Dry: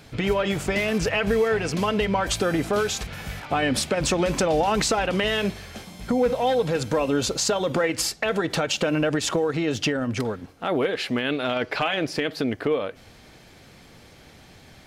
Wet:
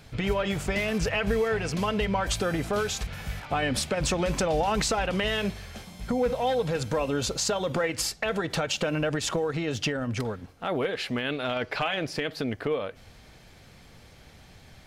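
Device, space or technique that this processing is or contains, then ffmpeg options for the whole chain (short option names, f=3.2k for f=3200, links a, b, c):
low shelf boost with a cut just above: -af "lowshelf=f=84:g=8,equalizer=f=310:t=o:w=0.78:g=-4,volume=-3.5dB"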